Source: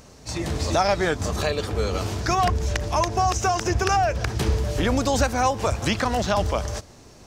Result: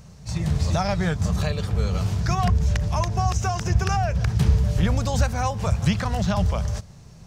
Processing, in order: resonant low shelf 220 Hz +8 dB, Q 3; trim -4.5 dB

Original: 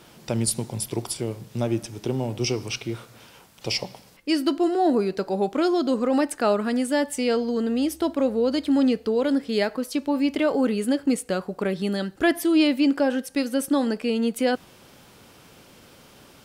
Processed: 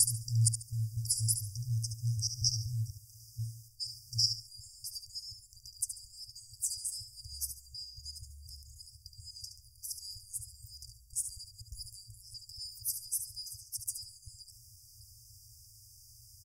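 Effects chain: slices played last to first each 242 ms, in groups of 3; feedback delay 71 ms, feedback 28%, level -8 dB; FFT band-reject 120–4700 Hz

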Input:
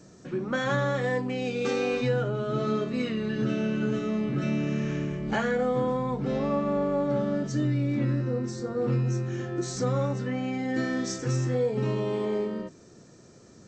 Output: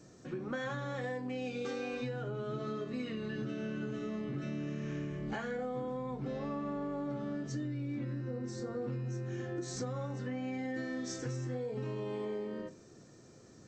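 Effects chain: on a send at -8 dB: reverberation RT60 0.30 s, pre-delay 3 ms; on the sum: compression, threshold -30 dBFS, peak gain reduction 9 dB; trim -5 dB

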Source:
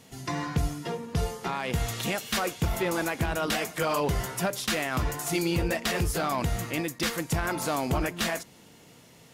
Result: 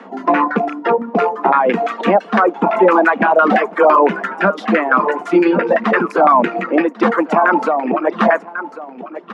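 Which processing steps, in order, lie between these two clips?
rattle on loud lows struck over -34 dBFS, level -26 dBFS; 4.13–6.21 s: peaking EQ 730 Hz -7.5 dB 0.6 oct; LFO low-pass saw down 5.9 Hz 670–1600 Hz; 7.63–8.07 s: compression 6:1, threshold -28 dBFS, peak gain reduction 8.5 dB; steep high-pass 190 Hz 96 dB/octave; delay 1095 ms -13 dB; reverb removal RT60 1.7 s; loudness maximiser +19 dB; trim -1 dB

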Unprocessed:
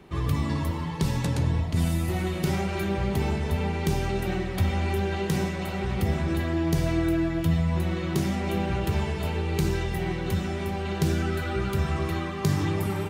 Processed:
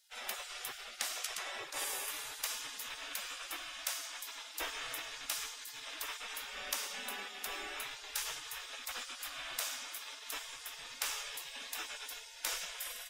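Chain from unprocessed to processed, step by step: band-stop 4.3 kHz, Q 9.4; spectral gate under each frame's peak -30 dB weak; trim +3.5 dB

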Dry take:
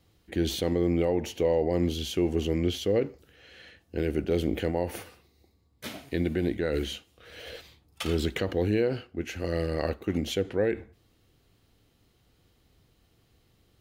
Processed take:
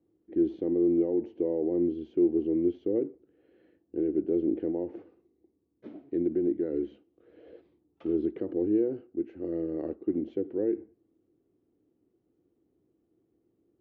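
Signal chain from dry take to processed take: band-pass filter 330 Hz, Q 4.1; distance through air 160 m; trim +5 dB

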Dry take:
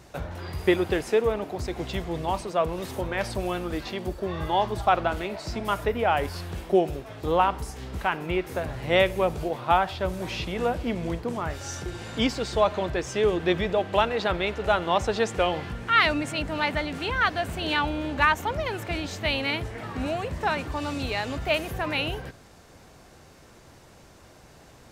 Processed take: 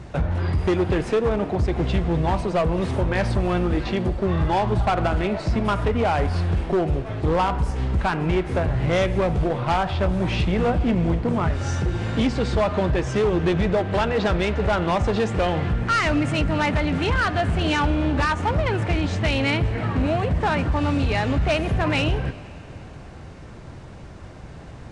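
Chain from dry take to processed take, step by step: tone controls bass +8 dB, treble -11 dB; de-hum 243.8 Hz, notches 7; in parallel at 0 dB: peak limiter -14.5 dBFS, peak gain reduction 7.5 dB; on the sum: compression 2:1, threshold -19 dBFS, peak gain reduction 5.5 dB; overload inside the chain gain 17.5 dB; on a send at -17.5 dB: reverberation RT60 3.2 s, pre-delay 95 ms; on the sum: resampled via 22.05 kHz; trim +1.5 dB; Vorbis 64 kbps 32 kHz

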